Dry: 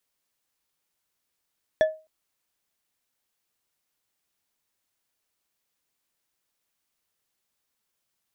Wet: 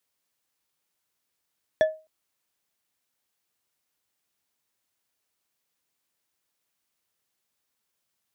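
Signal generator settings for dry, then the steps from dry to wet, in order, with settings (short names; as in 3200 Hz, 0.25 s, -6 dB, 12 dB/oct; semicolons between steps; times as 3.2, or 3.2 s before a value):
glass hit bar, length 0.26 s, lowest mode 629 Hz, decay 0.30 s, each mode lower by 9.5 dB, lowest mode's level -13 dB
HPF 57 Hz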